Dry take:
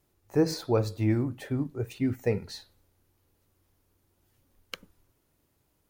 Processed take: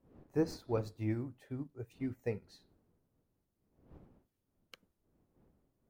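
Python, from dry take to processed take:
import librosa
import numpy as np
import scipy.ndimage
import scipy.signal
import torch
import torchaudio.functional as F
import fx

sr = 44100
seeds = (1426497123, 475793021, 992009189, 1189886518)

y = fx.dmg_wind(x, sr, seeds[0], corner_hz=300.0, level_db=-46.0)
y = fx.upward_expand(y, sr, threshold_db=-42.0, expansion=1.5)
y = F.gain(torch.from_numpy(y), -7.5).numpy()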